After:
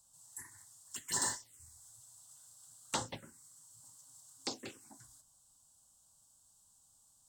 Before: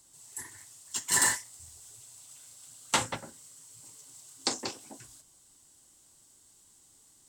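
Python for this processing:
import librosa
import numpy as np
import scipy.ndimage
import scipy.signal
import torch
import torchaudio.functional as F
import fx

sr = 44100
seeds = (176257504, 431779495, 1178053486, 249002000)

y = fx.env_phaser(x, sr, low_hz=350.0, high_hz=2400.0, full_db=-25.5)
y = F.gain(torch.from_numpy(y), -6.0).numpy()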